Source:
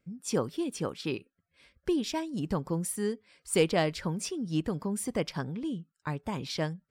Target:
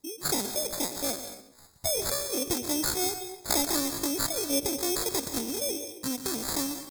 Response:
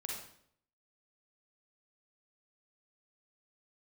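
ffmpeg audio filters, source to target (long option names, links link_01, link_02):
-filter_complex "[0:a]acrossover=split=280|3400[link_01][link_02][link_03];[link_02]acompressor=threshold=-37dB:ratio=16[link_04];[link_01][link_04][link_03]amix=inputs=3:normalize=0,aresample=32000,aresample=44100,acrusher=samples=27:mix=1:aa=0.000001,highshelf=frequency=6000:gain=-3.5,asplit=2[link_05][link_06];[1:a]atrim=start_sample=2205,adelay=126[link_07];[link_06][link_07]afir=irnorm=-1:irlink=0,volume=-7.5dB[link_08];[link_05][link_08]amix=inputs=2:normalize=0,aexciter=amount=7.6:drive=3.9:freq=2300,asetrate=78577,aresample=44100,atempo=0.561231,lowshelf=frequency=170:gain=6.5,bandreject=frequency=2300:width=29"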